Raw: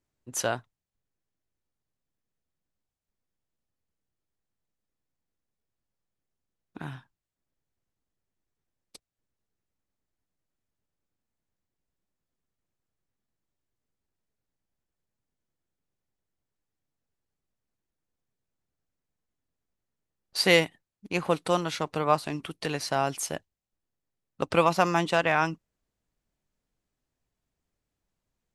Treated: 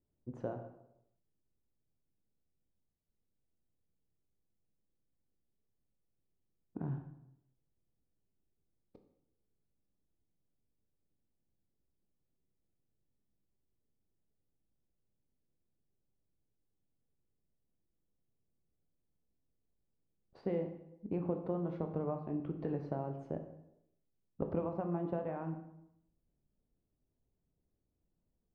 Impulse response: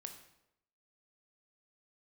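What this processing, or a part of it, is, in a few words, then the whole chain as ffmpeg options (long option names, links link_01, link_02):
television next door: -filter_complex "[0:a]acompressor=threshold=-32dB:ratio=4,lowpass=500[link_01];[1:a]atrim=start_sample=2205[link_02];[link_01][link_02]afir=irnorm=-1:irlink=0,volume=6.5dB"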